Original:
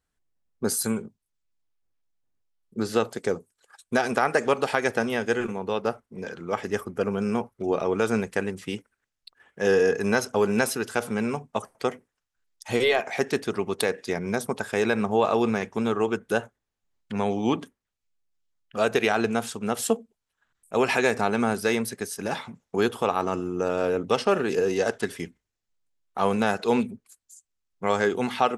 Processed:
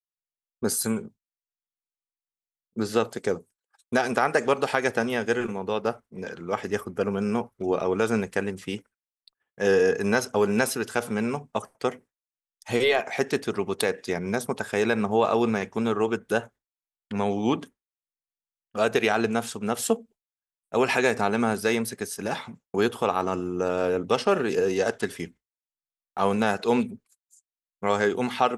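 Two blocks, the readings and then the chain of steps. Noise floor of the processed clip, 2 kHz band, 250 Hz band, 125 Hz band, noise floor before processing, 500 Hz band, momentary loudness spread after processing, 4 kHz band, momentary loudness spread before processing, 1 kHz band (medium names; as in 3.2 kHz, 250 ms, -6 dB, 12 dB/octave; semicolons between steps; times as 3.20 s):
under -85 dBFS, 0.0 dB, 0.0 dB, 0.0 dB, -83 dBFS, 0.0 dB, 9 LU, 0.0 dB, 9 LU, 0.0 dB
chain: expander -42 dBFS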